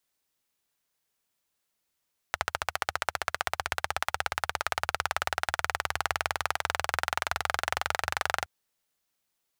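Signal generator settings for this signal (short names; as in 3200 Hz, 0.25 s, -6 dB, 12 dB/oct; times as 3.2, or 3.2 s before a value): single-cylinder engine model, changing speed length 6.12 s, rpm 1700, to 2800, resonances 80/810/1300 Hz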